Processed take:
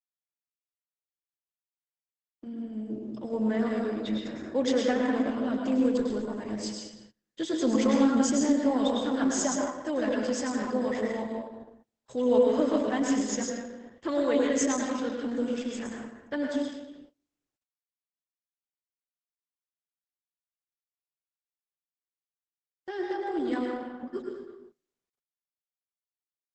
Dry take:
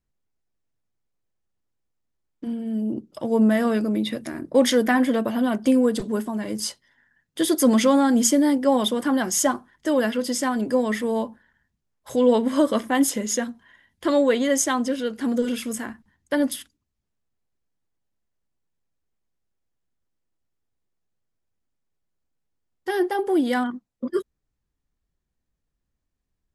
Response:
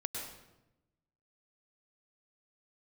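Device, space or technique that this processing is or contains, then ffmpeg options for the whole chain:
speakerphone in a meeting room: -filter_complex "[1:a]atrim=start_sample=2205[link_01];[0:a][link_01]afir=irnorm=-1:irlink=0,asplit=2[link_02][link_03];[link_03]adelay=210,highpass=300,lowpass=3400,asoftclip=type=hard:threshold=-12.5dB,volume=-12dB[link_04];[link_02][link_04]amix=inputs=2:normalize=0,dynaudnorm=framelen=420:gausssize=31:maxgain=4dB,agate=range=-25dB:threshold=-43dB:ratio=16:detection=peak,volume=-9dB" -ar 48000 -c:a libopus -b:a 12k

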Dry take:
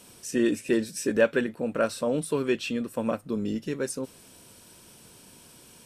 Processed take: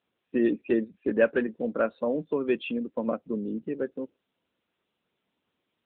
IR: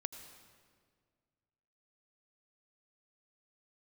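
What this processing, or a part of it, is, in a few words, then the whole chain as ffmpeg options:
mobile call with aggressive noise cancelling: -filter_complex "[0:a]asplit=3[link_01][link_02][link_03];[link_01]afade=type=out:start_time=1.49:duration=0.02[link_04];[link_02]lowpass=8100,afade=type=in:start_time=1.49:duration=0.02,afade=type=out:start_time=1.91:duration=0.02[link_05];[link_03]afade=type=in:start_time=1.91:duration=0.02[link_06];[link_04][link_05][link_06]amix=inputs=3:normalize=0,highpass=frequency=180:width=0.5412,highpass=frequency=180:width=1.3066,afftdn=noise_reduction=25:noise_floor=-35" -ar 8000 -c:a libopencore_amrnb -b:a 10200

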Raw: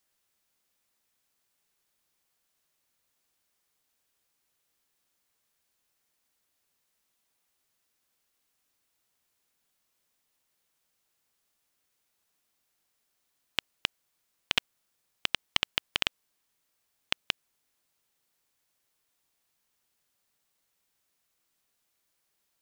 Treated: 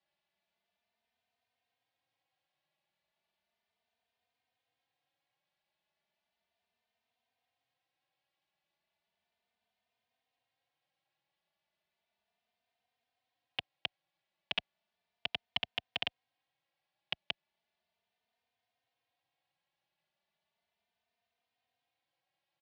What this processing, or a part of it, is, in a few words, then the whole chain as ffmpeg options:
barber-pole flanger into a guitar amplifier: -filter_complex "[0:a]asplit=2[link_01][link_02];[link_02]adelay=3.1,afreqshift=0.35[link_03];[link_01][link_03]amix=inputs=2:normalize=1,asoftclip=type=tanh:threshold=-17dB,highpass=88,equalizer=frequency=280:width_type=q:width=4:gain=-7,equalizer=frequency=410:width_type=q:width=4:gain=-5,equalizer=frequency=710:width_type=q:width=4:gain=9,equalizer=frequency=1300:width_type=q:width=4:gain=-7,lowpass=frequency=3900:width=0.5412,lowpass=frequency=3900:width=1.3066"

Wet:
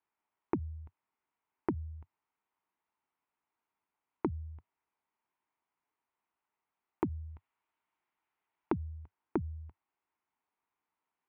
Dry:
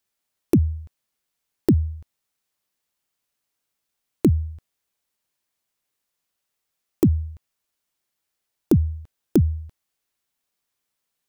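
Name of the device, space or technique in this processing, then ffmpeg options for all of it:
bass amplifier: -filter_complex "[0:a]acompressor=threshold=-28dB:ratio=6,highpass=82,equalizer=frequency=95:width_type=q:width=4:gain=-7,equalizer=frequency=140:width_type=q:width=4:gain=-9,equalizer=frequency=210:width_type=q:width=4:gain=-5,equalizer=frequency=540:width_type=q:width=4:gain=-9,equalizer=frequency=930:width_type=q:width=4:gain=8,equalizer=frequency=1700:width_type=q:width=4:gain=-5,lowpass=frequency=2200:width=0.5412,lowpass=frequency=2200:width=1.3066,asettb=1/sr,asplit=3[link_01][link_02][link_03];[link_01]atrim=end=7.294[link_04];[link_02]atrim=start=7.29:end=8.73,asetpts=PTS-STARTPTS,afade=type=in:duration=0.004:curve=qsin,afade=type=out:start_time=1.436:duration=0.004:curve=qsin,equalizer=frequency=3400:width=0.43:gain=5[link_05];[link_03]atrim=start=8.726[link_06];[link_04][link_05]acrossfade=duration=0.004:curve1=hsin:curve2=qsin[link_07];[link_07][link_06]acrossfade=duration=0.004:curve1=qsin:curve2=hsin,volume=-1dB"

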